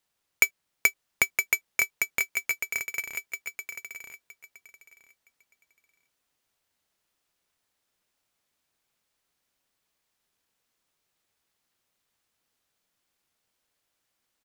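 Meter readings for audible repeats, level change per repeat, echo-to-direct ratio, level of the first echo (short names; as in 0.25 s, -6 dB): 3, -14.5 dB, -6.0 dB, -6.0 dB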